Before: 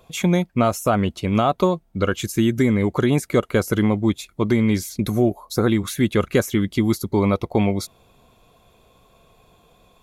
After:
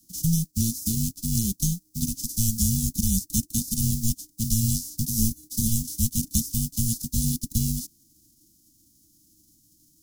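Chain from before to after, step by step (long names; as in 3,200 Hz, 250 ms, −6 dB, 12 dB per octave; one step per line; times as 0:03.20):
spectral envelope flattened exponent 0.3
elliptic band-stop filter 410–5,700 Hz, stop band 80 dB
frequency shifter −340 Hz
hollow resonant body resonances 740/1,700 Hz, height 9 dB, ringing for 90 ms
level −2.5 dB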